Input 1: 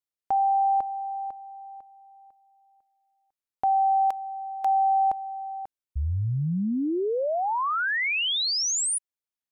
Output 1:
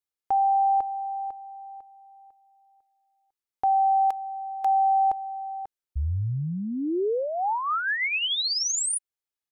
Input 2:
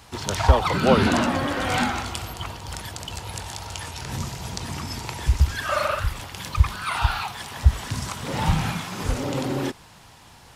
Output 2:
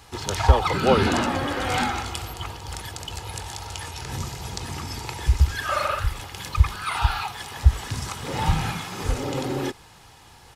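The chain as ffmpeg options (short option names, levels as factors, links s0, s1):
-af "aecho=1:1:2.4:0.32,volume=0.891"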